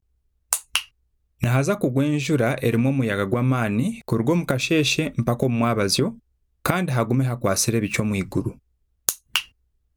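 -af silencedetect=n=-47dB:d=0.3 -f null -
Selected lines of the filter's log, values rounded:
silence_start: 0.00
silence_end: 0.52 | silence_duration: 0.52
silence_start: 0.88
silence_end: 1.40 | silence_duration: 0.52
silence_start: 6.19
silence_end: 6.65 | silence_duration: 0.46
silence_start: 8.58
silence_end: 9.08 | silence_duration: 0.50
silence_start: 9.49
silence_end: 9.96 | silence_duration: 0.47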